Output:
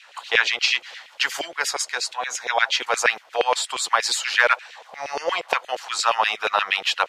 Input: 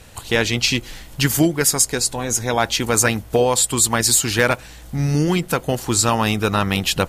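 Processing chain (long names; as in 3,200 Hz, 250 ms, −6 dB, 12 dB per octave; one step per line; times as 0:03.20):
gain on a spectral selection 0:04.76–0:05.58, 440–1,200 Hz +10 dB
auto-filter high-pass saw down 8.5 Hz 430–2,900 Hz
three-way crossover with the lows and the highs turned down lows −14 dB, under 600 Hz, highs −22 dB, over 5,700 Hz
level −1 dB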